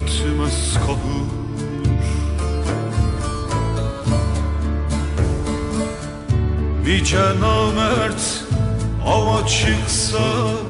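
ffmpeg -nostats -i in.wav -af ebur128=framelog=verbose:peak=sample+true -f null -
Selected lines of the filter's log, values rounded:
Integrated loudness:
  I:         -19.7 LUFS
  Threshold: -29.7 LUFS
Loudness range:
  LRA:         3.9 LU
  Threshold: -39.9 LUFS
  LRA low:   -21.6 LUFS
  LRA high:  -17.8 LUFS
Sample peak:
  Peak:       -4.5 dBFS
True peak:
  Peak:       -4.5 dBFS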